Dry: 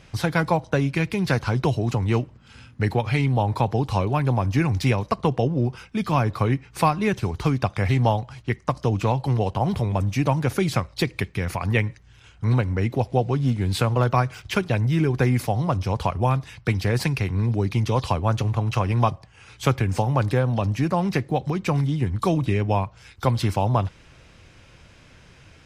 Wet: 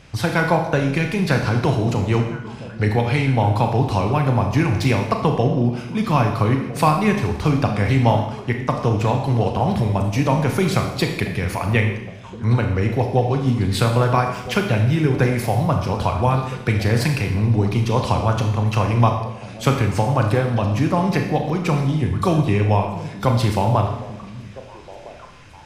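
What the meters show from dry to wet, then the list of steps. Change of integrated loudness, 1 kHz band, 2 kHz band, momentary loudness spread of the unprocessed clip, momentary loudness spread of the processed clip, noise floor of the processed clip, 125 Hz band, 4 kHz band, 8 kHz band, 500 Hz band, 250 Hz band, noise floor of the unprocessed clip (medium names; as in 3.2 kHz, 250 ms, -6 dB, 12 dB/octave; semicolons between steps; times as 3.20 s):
+4.0 dB, +4.0 dB, +4.5 dB, 4 LU, 6 LU, -37 dBFS, +3.5 dB, +4.0 dB, +4.0 dB, +4.0 dB, +4.0 dB, -51 dBFS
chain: on a send: repeats whose band climbs or falls 655 ms, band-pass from 190 Hz, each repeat 1.4 oct, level -11 dB; on the sum: Schroeder reverb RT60 0.84 s, combs from 26 ms, DRR 3.5 dB; trim +2.5 dB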